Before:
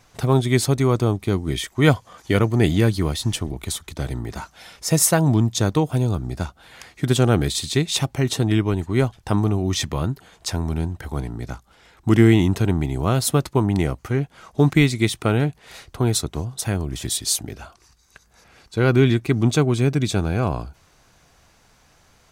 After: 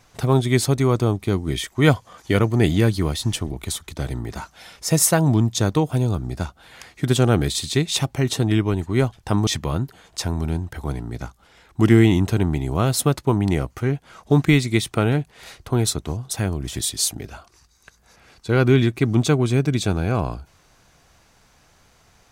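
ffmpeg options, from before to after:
ffmpeg -i in.wav -filter_complex "[0:a]asplit=2[link_01][link_02];[link_01]atrim=end=9.472[link_03];[link_02]atrim=start=9.748[link_04];[link_03][link_04]acrossfade=duration=0.004:curve1=hsin:curve2=hsin" out.wav

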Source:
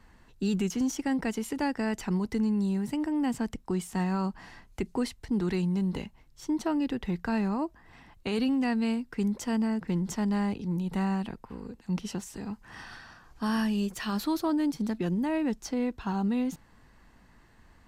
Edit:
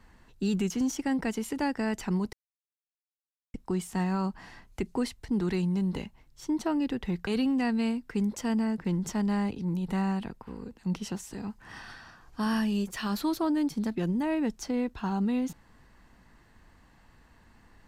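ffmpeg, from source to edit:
ffmpeg -i in.wav -filter_complex "[0:a]asplit=4[link_01][link_02][link_03][link_04];[link_01]atrim=end=2.33,asetpts=PTS-STARTPTS,afade=type=out:start_time=2.326:duration=0.004:curve=hsin[link_05];[link_02]atrim=start=2.33:end=3.54,asetpts=PTS-STARTPTS,volume=0[link_06];[link_03]atrim=start=3.54:end=7.272,asetpts=PTS-STARTPTS,afade=type=in:duration=0.004:curve=hsin[link_07];[link_04]atrim=start=8.298[link_08];[link_05][link_06][link_07]concat=n=3:v=0:a=1[link_09];[link_09][link_08]acrossfade=duration=0.004:curve1=hsin:curve2=hsin" out.wav

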